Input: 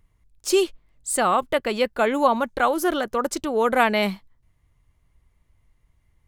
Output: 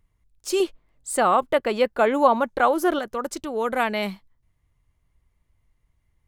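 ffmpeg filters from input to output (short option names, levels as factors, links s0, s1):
-filter_complex "[0:a]asettb=1/sr,asplit=3[s0][s1][s2];[s0]atrim=end=0.604[s3];[s1]atrim=start=0.6:end=2.99,asetpts=PTS-STARTPTS,afade=t=in:d=0.004:c=qsin,afade=t=out:st=2.386:d=0.004:c=qsin,equalizer=f=620:w=0.34:g=6.5[s4];[s2]atrim=start=2.986[s5];[s3][s4]acrossfade=d=0.004:c1=hsin:c2=qsin[s6];[s6][s5]acrossfade=d=0.004:c1=qsin:c2=hsin,volume=0.596"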